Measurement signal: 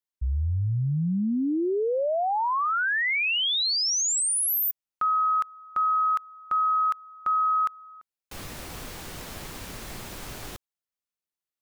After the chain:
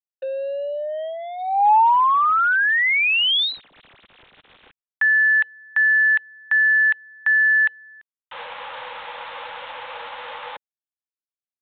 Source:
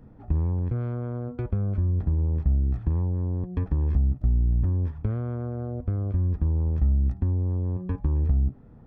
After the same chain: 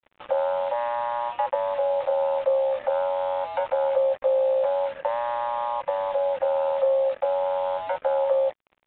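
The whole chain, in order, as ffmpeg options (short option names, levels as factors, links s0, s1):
-af "lowshelf=f=300:t=q:w=3:g=-7,afreqshift=470,acontrast=71,acrusher=bits=5:mix=0:aa=0.5,aresample=8000,aresample=44100"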